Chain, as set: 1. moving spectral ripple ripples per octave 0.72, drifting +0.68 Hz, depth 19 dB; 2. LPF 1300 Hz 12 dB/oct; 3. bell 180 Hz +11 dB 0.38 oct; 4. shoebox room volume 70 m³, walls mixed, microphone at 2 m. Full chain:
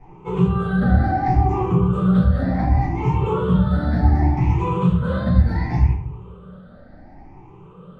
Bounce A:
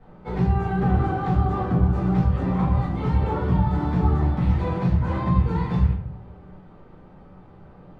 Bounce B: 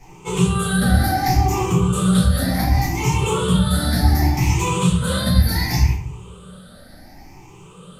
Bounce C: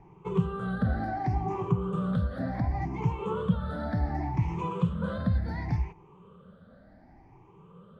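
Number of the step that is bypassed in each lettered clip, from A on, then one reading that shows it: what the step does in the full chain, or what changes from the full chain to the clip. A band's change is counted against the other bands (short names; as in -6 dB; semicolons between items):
1, loudness change -3.5 LU; 2, 4 kHz band +18.5 dB; 4, echo-to-direct 9.5 dB to none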